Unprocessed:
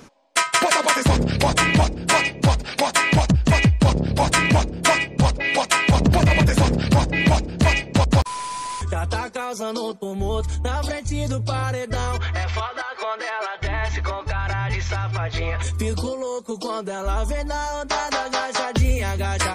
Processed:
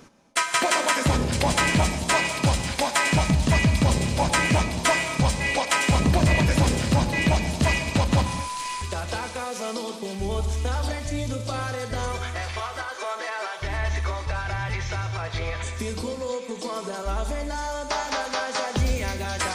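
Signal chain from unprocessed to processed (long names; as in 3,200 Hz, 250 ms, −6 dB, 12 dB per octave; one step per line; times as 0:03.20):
delay with a high-pass on its return 961 ms, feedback 62%, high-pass 3,600 Hz, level −5 dB
reverb whose tail is shaped and stops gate 280 ms flat, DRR 6.5 dB
level −4.5 dB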